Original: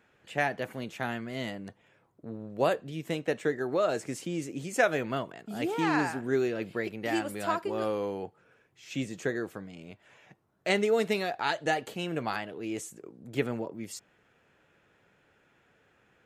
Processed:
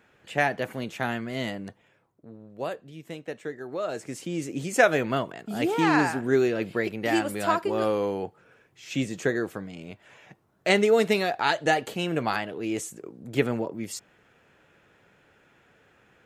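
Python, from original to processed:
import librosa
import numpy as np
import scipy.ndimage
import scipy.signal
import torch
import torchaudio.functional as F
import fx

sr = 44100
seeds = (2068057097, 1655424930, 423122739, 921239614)

y = fx.gain(x, sr, db=fx.line((1.63, 4.5), (2.32, -6.0), (3.63, -6.0), (4.59, 5.5)))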